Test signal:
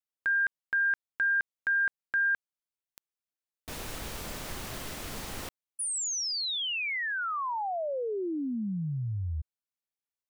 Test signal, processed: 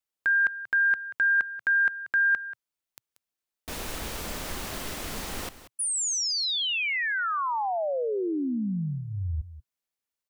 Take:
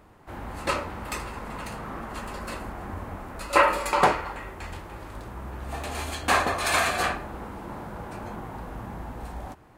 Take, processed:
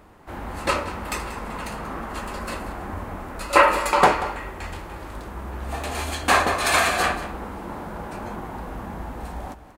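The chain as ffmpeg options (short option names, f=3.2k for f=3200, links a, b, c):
-af "equalizer=f=120:w=4.8:g=-9.5,aecho=1:1:185:0.188,volume=4dB"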